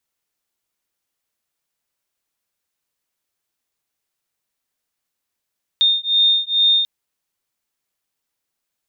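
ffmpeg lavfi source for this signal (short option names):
-f lavfi -i "aevalsrc='0.15*(sin(2*PI*3650*t)+sin(2*PI*3652.3*t))':d=1.04:s=44100"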